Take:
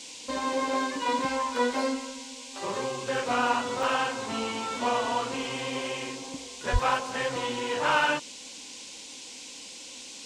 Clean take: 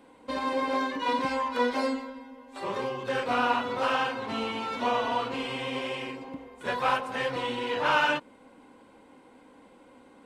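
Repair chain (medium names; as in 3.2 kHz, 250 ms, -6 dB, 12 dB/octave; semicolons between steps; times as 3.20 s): de-plosive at 6.72 s; interpolate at 3.83 s, 1.2 ms; noise print and reduce 11 dB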